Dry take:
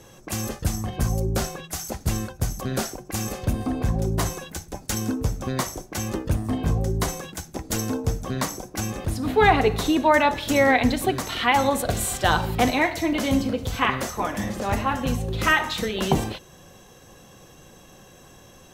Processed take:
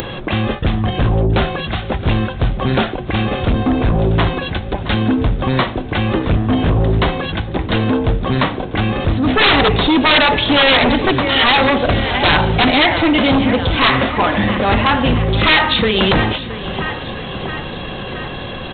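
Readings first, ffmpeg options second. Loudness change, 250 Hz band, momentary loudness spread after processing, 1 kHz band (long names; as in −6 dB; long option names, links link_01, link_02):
+9.0 dB, +9.5 dB, 11 LU, +7.5 dB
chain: -af "acompressor=mode=upward:threshold=-29dB:ratio=2.5,aecho=1:1:670|1340|2010|2680|3350|4020:0.158|0.0951|0.0571|0.0342|0.0205|0.0123,aresample=8000,aeval=exprs='0.596*sin(PI/2*5.01*val(0)/0.596)':channel_layout=same,aresample=44100,crystalizer=i=2.5:c=0,volume=-5dB"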